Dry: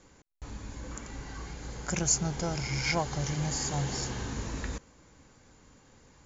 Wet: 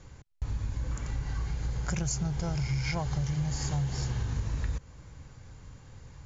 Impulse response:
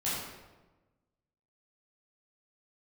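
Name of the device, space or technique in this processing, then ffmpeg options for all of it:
jukebox: -af "lowpass=6900,lowshelf=frequency=170:width_type=q:width=1.5:gain=10,acompressor=threshold=-31dB:ratio=4,volume=2.5dB"

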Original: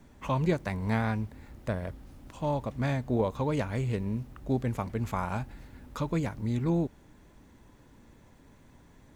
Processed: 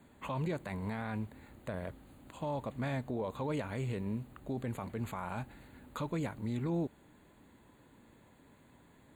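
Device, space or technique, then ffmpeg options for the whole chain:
PA system with an anti-feedback notch: -af "highpass=frequency=150:poles=1,asuperstop=centerf=5500:order=8:qfactor=2.7,alimiter=level_in=1.5dB:limit=-24dB:level=0:latency=1:release=19,volume=-1.5dB,volume=-2dB"

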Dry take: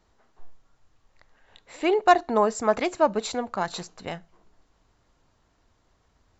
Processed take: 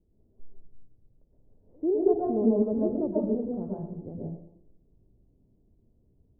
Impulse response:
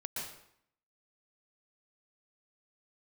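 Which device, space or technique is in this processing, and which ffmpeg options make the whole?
next room: -filter_complex "[0:a]lowpass=frequency=410:width=0.5412,lowpass=frequency=410:width=1.3066[link_01];[1:a]atrim=start_sample=2205[link_02];[link_01][link_02]afir=irnorm=-1:irlink=0,volume=3dB"

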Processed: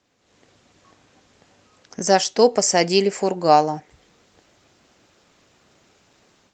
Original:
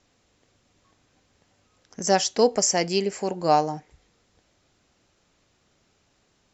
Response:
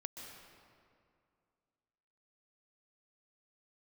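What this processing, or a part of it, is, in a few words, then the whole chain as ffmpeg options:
video call: -af "highpass=frequency=160:poles=1,dynaudnorm=framelen=190:gausssize=3:maxgain=11.5dB" -ar 48000 -c:a libopus -b:a 32k

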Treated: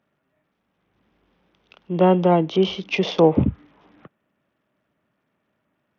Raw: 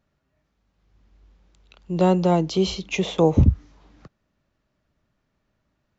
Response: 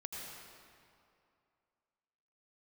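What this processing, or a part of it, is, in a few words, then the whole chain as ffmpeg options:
Bluetooth headset: -af "highpass=180,aresample=8000,aresample=44100,volume=3.5dB" -ar 48000 -c:a sbc -b:a 64k

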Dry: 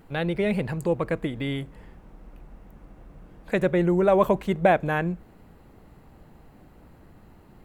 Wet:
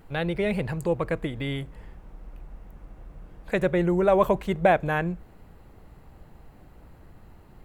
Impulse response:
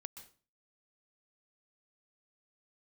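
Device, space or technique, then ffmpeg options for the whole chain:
low shelf boost with a cut just above: -af "lowshelf=frequency=80:gain=5.5,equalizer=frequency=240:width_type=o:width=1.1:gain=-4"

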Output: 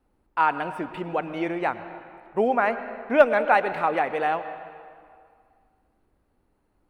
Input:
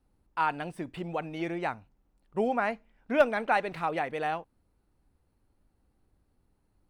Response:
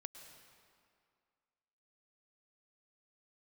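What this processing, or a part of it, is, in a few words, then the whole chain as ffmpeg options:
filtered reverb send: -filter_complex "[0:a]asplit=2[link_01][link_02];[link_02]highpass=220,lowpass=3100[link_03];[1:a]atrim=start_sample=2205[link_04];[link_03][link_04]afir=irnorm=-1:irlink=0,volume=7dB[link_05];[link_01][link_05]amix=inputs=2:normalize=0"

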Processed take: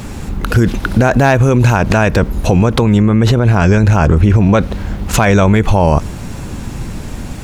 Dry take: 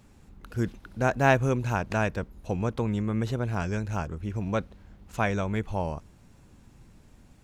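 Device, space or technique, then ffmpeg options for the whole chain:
loud club master: -filter_complex "[0:a]acompressor=threshold=-29dB:ratio=2.5,asoftclip=type=hard:threshold=-20.5dB,alimiter=level_in=31dB:limit=-1dB:release=50:level=0:latency=1,asettb=1/sr,asplit=3[link_01][link_02][link_03];[link_01]atrim=end=2.974[link_04];[link_02]atrim=start=2.97:end=4.55,asetpts=PTS-STARTPTS,afade=type=in:duration=0.004:curve=qsin,afade=type=out:start_time=1.576:duration=0.004:curve=qsin,highshelf=frequency=4600:gain=-6[link_05];[link_03]atrim=start=4.546[link_06];[link_04][link_05]acrossfade=duration=0.004:curve1=hsin:curve2=qsin[link_07];[link_07][link_06]acrossfade=duration=0.004:curve1=qsin:curve2=hsin,volume=-1dB"

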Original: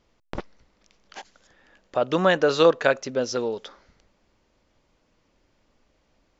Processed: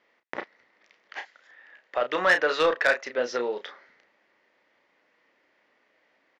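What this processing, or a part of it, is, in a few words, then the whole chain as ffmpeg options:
intercom: -filter_complex "[0:a]asettb=1/sr,asplit=3[link_01][link_02][link_03];[link_01]atrim=end=1.194[link_04];[link_02]atrim=start=1.19:end=3.18,asetpts=PTS-STARTPTS,afade=type=in:duration=0.004:curve=qsin,afade=type=out:start_time=1.986:duration=0.004:curve=qsin,lowshelf=frequency=490:gain=-6.5[link_05];[link_03]atrim=start=3.176[link_06];[link_04][link_05]acrossfade=duration=0.004:curve1=hsin:curve2=qsin[link_07];[link_07][link_06]acrossfade=duration=0.004:curve1=qsin:curve2=hsin,highpass=390,lowpass=3700,equalizer=frequency=1900:width_type=o:width=0.47:gain=12,asoftclip=type=tanh:threshold=-12.5dB,asplit=2[link_08][link_09];[link_09]adelay=33,volume=-8dB[link_10];[link_08][link_10]amix=inputs=2:normalize=0"

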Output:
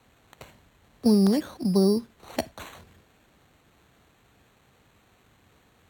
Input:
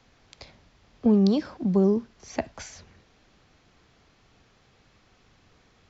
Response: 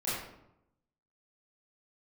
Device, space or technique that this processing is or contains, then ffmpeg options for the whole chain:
crushed at another speed: -af "asetrate=55125,aresample=44100,acrusher=samples=7:mix=1:aa=0.000001,asetrate=35280,aresample=44100,highpass=45,equalizer=frequency=4100:width=6.3:gain=5"

